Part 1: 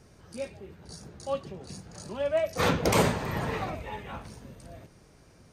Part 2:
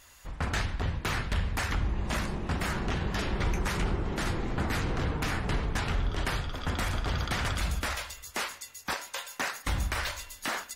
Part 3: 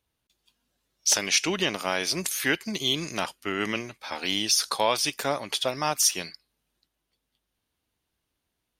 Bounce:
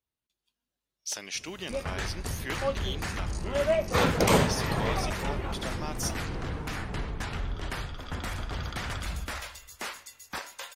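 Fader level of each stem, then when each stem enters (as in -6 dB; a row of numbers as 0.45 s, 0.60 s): +1.0 dB, -4.0 dB, -12.5 dB; 1.35 s, 1.45 s, 0.00 s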